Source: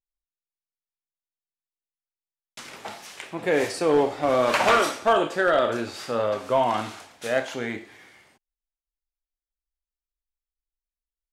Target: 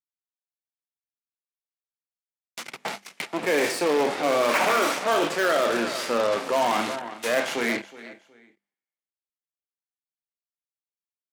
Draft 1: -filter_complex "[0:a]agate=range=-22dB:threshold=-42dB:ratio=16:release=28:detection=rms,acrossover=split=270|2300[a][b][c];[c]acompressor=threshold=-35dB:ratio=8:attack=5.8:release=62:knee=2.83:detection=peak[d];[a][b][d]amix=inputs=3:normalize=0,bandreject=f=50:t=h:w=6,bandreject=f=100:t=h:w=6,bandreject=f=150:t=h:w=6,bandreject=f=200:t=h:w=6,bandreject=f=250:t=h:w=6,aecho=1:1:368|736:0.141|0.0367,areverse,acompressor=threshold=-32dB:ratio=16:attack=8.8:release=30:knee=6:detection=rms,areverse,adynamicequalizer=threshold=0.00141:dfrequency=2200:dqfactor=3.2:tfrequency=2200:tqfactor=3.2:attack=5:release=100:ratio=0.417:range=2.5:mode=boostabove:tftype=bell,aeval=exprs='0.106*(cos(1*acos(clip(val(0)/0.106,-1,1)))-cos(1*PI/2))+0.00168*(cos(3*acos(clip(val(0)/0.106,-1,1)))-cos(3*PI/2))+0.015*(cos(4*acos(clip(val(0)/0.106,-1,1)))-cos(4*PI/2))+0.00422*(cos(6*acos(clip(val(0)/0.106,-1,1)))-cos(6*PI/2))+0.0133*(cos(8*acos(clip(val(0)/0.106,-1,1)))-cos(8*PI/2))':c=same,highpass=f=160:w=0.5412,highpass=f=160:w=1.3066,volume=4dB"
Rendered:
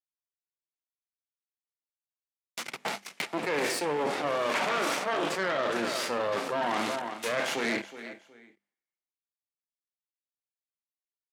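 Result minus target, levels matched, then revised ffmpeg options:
compressor: peak gain reduction +8 dB
-filter_complex "[0:a]agate=range=-22dB:threshold=-42dB:ratio=16:release=28:detection=rms,acrossover=split=270|2300[a][b][c];[c]acompressor=threshold=-35dB:ratio=8:attack=5.8:release=62:knee=2.83:detection=peak[d];[a][b][d]amix=inputs=3:normalize=0,bandreject=f=50:t=h:w=6,bandreject=f=100:t=h:w=6,bandreject=f=150:t=h:w=6,bandreject=f=200:t=h:w=6,bandreject=f=250:t=h:w=6,aecho=1:1:368|736:0.141|0.0367,areverse,acompressor=threshold=-23.5dB:ratio=16:attack=8.8:release=30:knee=6:detection=rms,areverse,adynamicequalizer=threshold=0.00141:dfrequency=2200:dqfactor=3.2:tfrequency=2200:tqfactor=3.2:attack=5:release=100:ratio=0.417:range=2.5:mode=boostabove:tftype=bell,aeval=exprs='0.106*(cos(1*acos(clip(val(0)/0.106,-1,1)))-cos(1*PI/2))+0.00168*(cos(3*acos(clip(val(0)/0.106,-1,1)))-cos(3*PI/2))+0.015*(cos(4*acos(clip(val(0)/0.106,-1,1)))-cos(4*PI/2))+0.00422*(cos(6*acos(clip(val(0)/0.106,-1,1)))-cos(6*PI/2))+0.0133*(cos(8*acos(clip(val(0)/0.106,-1,1)))-cos(8*PI/2))':c=same,highpass=f=160:w=0.5412,highpass=f=160:w=1.3066,volume=4dB"

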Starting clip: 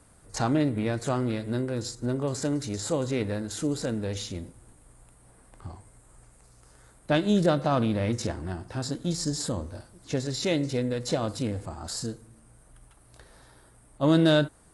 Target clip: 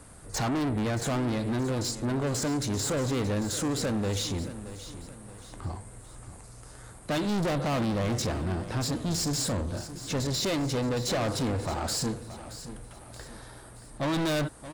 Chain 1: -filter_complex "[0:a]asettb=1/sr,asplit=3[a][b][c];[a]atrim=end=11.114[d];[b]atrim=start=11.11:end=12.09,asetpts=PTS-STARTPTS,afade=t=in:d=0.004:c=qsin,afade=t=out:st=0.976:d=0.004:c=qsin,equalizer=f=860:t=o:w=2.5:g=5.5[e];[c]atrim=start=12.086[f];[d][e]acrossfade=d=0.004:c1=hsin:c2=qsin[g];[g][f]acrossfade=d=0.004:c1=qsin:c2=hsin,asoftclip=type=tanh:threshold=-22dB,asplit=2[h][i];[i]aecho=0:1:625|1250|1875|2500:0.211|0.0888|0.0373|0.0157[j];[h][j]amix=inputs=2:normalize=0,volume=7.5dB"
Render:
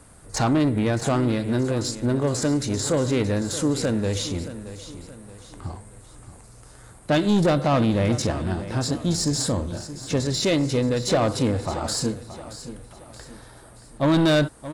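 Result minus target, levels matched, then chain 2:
soft clip: distortion -7 dB
-filter_complex "[0:a]asettb=1/sr,asplit=3[a][b][c];[a]atrim=end=11.114[d];[b]atrim=start=11.11:end=12.09,asetpts=PTS-STARTPTS,afade=t=in:d=0.004:c=qsin,afade=t=out:st=0.976:d=0.004:c=qsin,equalizer=f=860:t=o:w=2.5:g=5.5[e];[c]atrim=start=12.086[f];[d][e]acrossfade=d=0.004:c1=hsin:c2=qsin[g];[g][f]acrossfade=d=0.004:c1=qsin:c2=hsin,asoftclip=type=tanh:threshold=-33.5dB,asplit=2[h][i];[i]aecho=0:1:625|1250|1875|2500:0.211|0.0888|0.0373|0.0157[j];[h][j]amix=inputs=2:normalize=0,volume=7.5dB"

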